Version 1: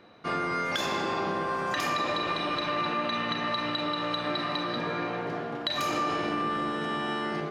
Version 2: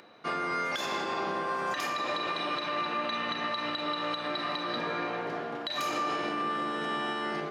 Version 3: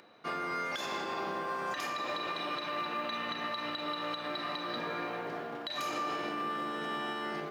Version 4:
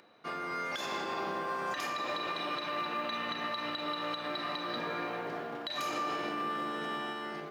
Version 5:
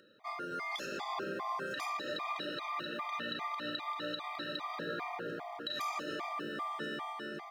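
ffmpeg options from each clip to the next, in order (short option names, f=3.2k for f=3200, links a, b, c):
-af "acompressor=mode=upward:threshold=-51dB:ratio=2.5,highpass=f=310:p=1,alimiter=limit=-22dB:level=0:latency=1:release=154"
-af "acrusher=bits=9:mode=log:mix=0:aa=0.000001,volume=-4dB"
-af "dynaudnorm=f=140:g=9:m=3dB,volume=-2.5dB"
-af "afftfilt=real='re*gt(sin(2*PI*2.5*pts/sr)*(1-2*mod(floor(b*sr/1024/630),2)),0)':imag='im*gt(sin(2*PI*2.5*pts/sr)*(1-2*mod(floor(b*sr/1024/630),2)),0)':win_size=1024:overlap=0.75"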